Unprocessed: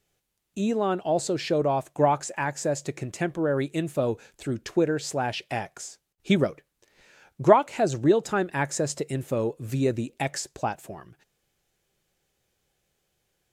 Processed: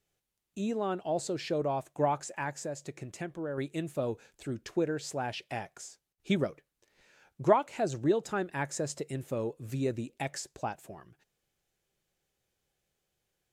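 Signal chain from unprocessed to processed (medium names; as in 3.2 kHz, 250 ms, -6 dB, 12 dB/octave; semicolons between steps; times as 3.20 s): 2.55–3.58 s: compression 1.5:1, threshold -34 dBFS, peak gain reduction 5 dB; trim -7 dB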